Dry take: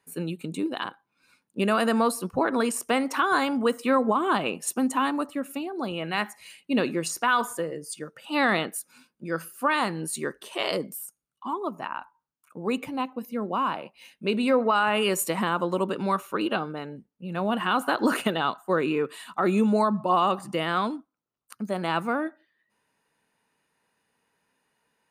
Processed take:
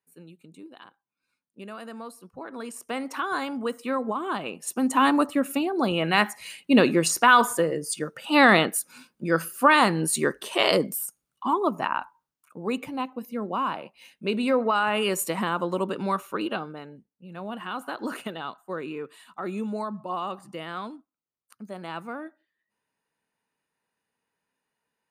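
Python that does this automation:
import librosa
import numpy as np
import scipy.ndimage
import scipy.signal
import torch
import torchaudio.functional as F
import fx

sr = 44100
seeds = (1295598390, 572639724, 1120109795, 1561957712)

y = fx.gain(x, sr, db=fx.line((2.32, -16.5), (3.05, -5.5), (4.58, -5.5), (5.09, 6.5), (11.96, 6.5), (12.58, -1.0), (16.28, -1.0), (17.28, -9.0)))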